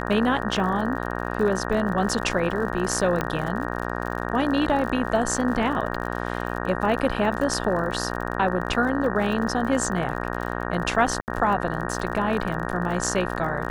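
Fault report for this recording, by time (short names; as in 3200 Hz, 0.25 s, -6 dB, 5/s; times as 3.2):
buzz 60 Hz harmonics 31 -29 dBFS
crackle 50/s -31 dBFS
3.21 pop -11 dBFS
11.21–11.28 gap 69 ms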